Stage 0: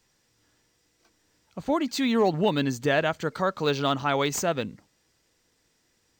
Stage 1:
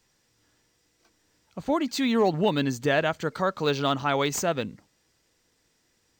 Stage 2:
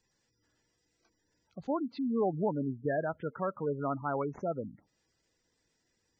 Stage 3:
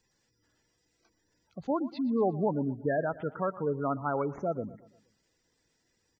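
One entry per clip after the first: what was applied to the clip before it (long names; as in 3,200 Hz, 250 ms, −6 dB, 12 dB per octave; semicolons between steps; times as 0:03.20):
no processing that can be heard
treble cut that deepens with the level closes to 1,700 Hz, closed at −24.5 dBFS; gate on every frequency bin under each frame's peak −15 dB strong; level −7 dB
repeating echo 118 ms, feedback 47%, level −18 dB; level +2.5 dB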